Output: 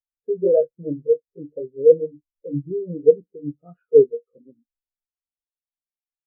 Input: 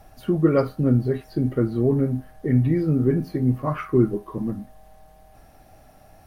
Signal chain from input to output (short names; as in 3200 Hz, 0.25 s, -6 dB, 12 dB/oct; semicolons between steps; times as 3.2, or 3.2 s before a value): delay-line pitch shifter +2.5 st; small resonant body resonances 500/2800 Hz, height 12 dB, ringing for 25 ms; spectral expander 2.5:1